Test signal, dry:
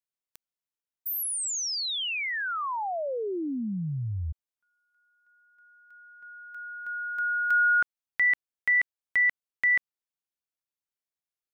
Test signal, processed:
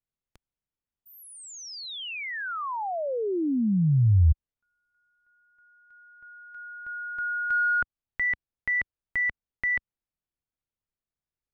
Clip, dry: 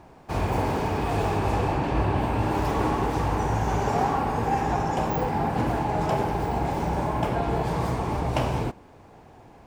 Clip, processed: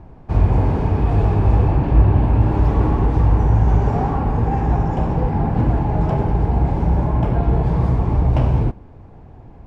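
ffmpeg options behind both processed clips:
-af "acontrast=79,aemphasis=mode=reproduction:type=riaa,volume=0.422"

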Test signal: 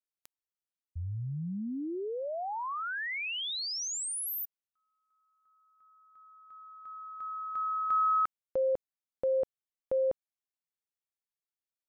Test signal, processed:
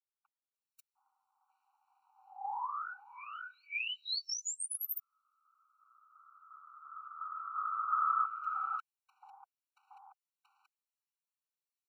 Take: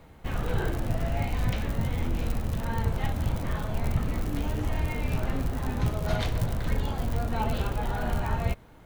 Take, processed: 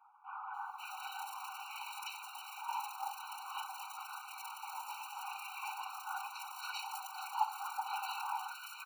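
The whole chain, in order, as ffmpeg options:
-filter_complex "[0:a]afftfilt=real='hypot(re,im)*cos(2*PI*random(0))':imag='hypot(re,im)*sin(2*PI*random(1))':win_size=512:overlap=0.75,acrossover=split=1500[s0][s1];[s1]adelay=540[s2];[s0][s2]amix=inputs=2:normalize=0,afftfilt=real='re*eq(mod(floor(b*sr/1024/760),2),1)':imag='im*eq(mod(floor(b*sr/1024/760),2),1)':win_size=1024:overlap=0.75,volume=1.88"

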